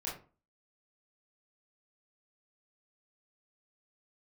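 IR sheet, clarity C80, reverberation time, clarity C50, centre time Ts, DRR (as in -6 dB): 12.0 dB, 0.35 s, 5.5 dB, 36 ms, -6.5 dB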